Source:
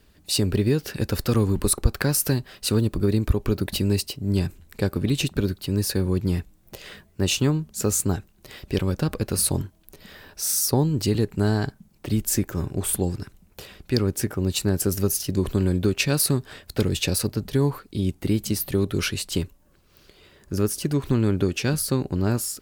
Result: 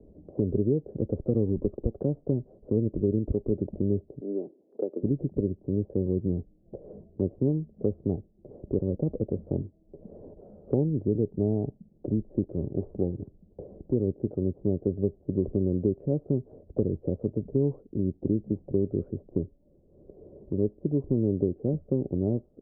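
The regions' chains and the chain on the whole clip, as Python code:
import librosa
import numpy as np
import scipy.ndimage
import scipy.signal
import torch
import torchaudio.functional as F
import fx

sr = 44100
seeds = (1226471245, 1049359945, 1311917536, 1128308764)

y = fx.chain(x, sr, fx.highpass(hz=320.0, slope=24),
    fx.air_absorb(metres=430.0),
    fx.band_squash(depth_pct=40), at=(4.2, 5.03))
y = scipy.signal.sosfilt(scipy.signal.butter(6, 590.0, 'lowpass', fs=sr, output='sos'), y)
y = fx.low_shelf(y, sr, hz=180.0, db=-9.0)
y = fx.band_squash(y, sr, depth_pct=40)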